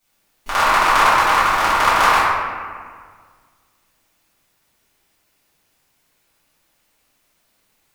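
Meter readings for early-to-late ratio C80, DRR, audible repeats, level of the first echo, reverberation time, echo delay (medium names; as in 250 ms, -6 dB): -0.5 dB, -14.5 dB, no echo, no echo, 1.8 s, no echo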